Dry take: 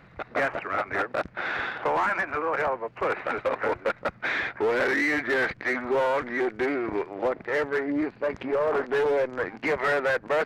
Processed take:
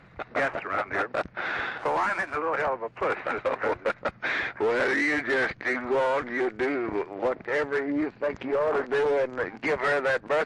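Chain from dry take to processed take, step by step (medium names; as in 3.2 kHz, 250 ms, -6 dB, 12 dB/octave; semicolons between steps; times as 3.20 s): 1.79–2.36 s: companding laws mixed up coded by A; MP3 48 kbps 24 kHz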